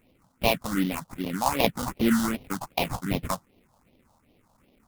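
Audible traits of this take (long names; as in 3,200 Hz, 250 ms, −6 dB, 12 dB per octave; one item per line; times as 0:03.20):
aliases and images of a low sample rate 1,700 Hz, jitter 20%
phaser sweep stages 4, 2.6 Hz, lowest notch 360–1,400 Hz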